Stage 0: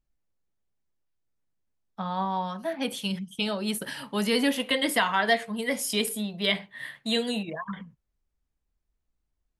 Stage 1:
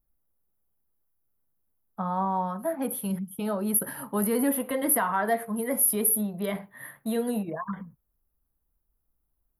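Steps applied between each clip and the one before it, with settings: in parallel at -1 dB: peak limiter -21 dBFS, peak gain reduction 10 dB; on the sum: FFT filter 1.3 kHz 0 dB, 3 kHz -19 dB, 7.8 kHz -18 dB, 11 kHz +13 dB; trim -3.5 dB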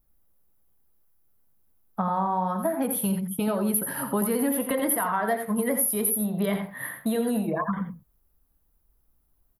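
compression, threshold -31 dBFS, peak gain reduction 12.5 dB; delay 86 ms -8 dB; trim +8 dB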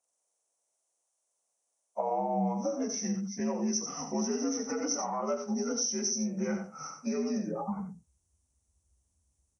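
frequency axis rescaled in octaves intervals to 83%; high-pass sweep 610 Hz -> 72 Hz, 1.96–2.76 s; trim -5.5 dB

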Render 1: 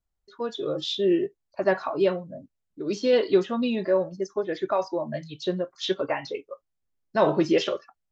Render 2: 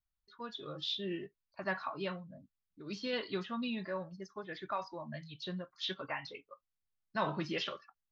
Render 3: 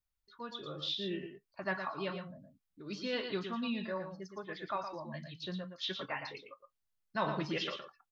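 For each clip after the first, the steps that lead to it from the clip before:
FFT filter 200 Hz 0 dB, 370 Hz -11 dB, 590 Hz -9 dB, 1.1 kHz +2 dB, 4.5 kHz +2 dB, 7.3 kHz -10 dB; trim -8.5 dB
delay 115 ms -7.5 dB

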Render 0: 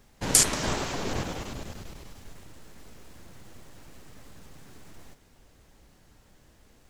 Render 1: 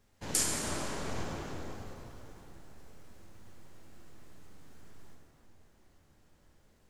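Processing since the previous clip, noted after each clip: flange 1.8 Hz, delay 8.5 ms, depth 5.5 ms, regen +85%; plate-style reverb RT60 3.6 s, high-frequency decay 0.45×, DRR -1.5 dB; trim -7 dB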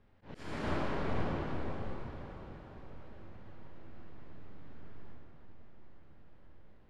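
slow attack 343 ms; distance through air 370 m; echo that smears into a reverb 500 ms, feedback 52%, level -11.5 dB; trim +4 dB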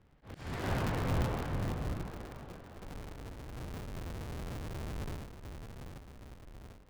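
cycle switcher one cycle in 2, inverted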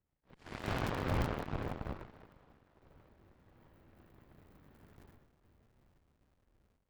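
Chebyshev shaper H 6 -15 dB, 7 -16 dB, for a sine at -20.5 dBFS; trim -2.5 dB

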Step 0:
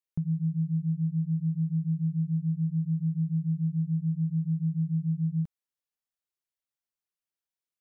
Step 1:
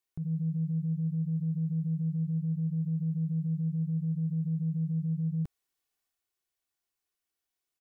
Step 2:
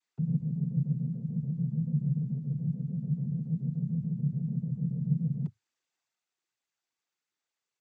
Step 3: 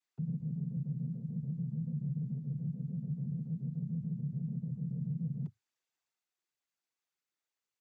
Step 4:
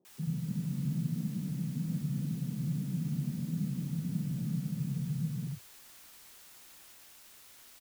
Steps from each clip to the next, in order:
comb 2.7 ms, depth 48%; in parallel at +2.5 dB: peak limiter -29.5 dBFS, peak gain reduction 7 dB; on the sum: transient shaper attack -7 dB, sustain +3 dB; trim -3 dB
gain riding 0.5 s; noise-vocoded speech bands 16
peak limiter -25 dBFS, peak gain reduction 8 dB; trim -4.5 dB
word length cut 10-bit, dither triangular; ever faster or slower copies 309 ms, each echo +3 st, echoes 2, each echo -6 dB; three bands offset in time mids, highs, lows 50/80 ms, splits 150/510 Hz; trim +4.5 dB

